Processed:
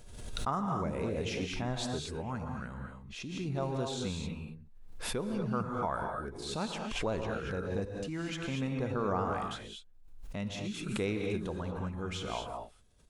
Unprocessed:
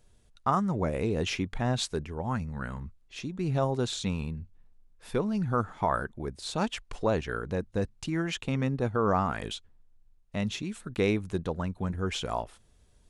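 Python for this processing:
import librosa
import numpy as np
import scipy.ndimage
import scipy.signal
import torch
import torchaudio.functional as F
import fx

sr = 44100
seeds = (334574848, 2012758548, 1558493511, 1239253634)

y = fx.notch(x, sr, hz=1800.0, q=27.0)
y = fx.rev_gated(y, sr, seeds[0], gate_ms=260, shape='rising', drr_db=2.0)
y = fx.pre_swell(y, sr, db_per_s=45.0)
y = y * 10.0 ** (-7.5 / 20.0)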